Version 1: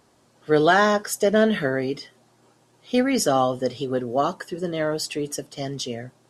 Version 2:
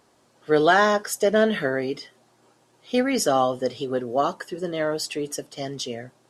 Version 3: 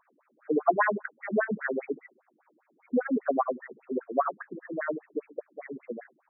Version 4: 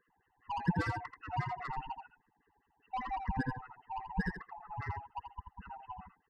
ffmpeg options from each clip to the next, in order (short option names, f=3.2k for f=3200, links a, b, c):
-af "bass=f=250:g=-5,treble=f=4k:g=-1"
-af "afftfilt=real='re*between(b*sr/1024,230*pow(1900/230,0.5+0.5*sin(2*PI*5*pts/sr))/1.41,230*pow(1900/230,0.5+0.5*sin(2*PI*5*pts/sr))*1.41)':imag='im*between(b*sr/1024,230*pow(1900/230,0.5+0.5*sin(2*PI*5*pts/sr))/1.41,230*pow(1900/230,0.5+0.5*sin(2*PI*5*pts/sr))*1.41)':win_size=1024:overlap=0.75"
-filter_complex "[0:a]afftfilt=real='real(if(lt(b,1008),b+24*(1-2*mod(floor(b/24),2)),b),0)':imag='imag(if(lt(b,1008),b+24*(1-2*mod(floor(b/24),2)),b),0)':win_size=2048:overlap=0.75,acrossover=split=510[a][b];[b]asoftclip=type=tanh:threshold=-27dB[c];[a][c]amix=inputs=2:normalize=0,aecho=1:1:83:0.447,volume=-7.5dB"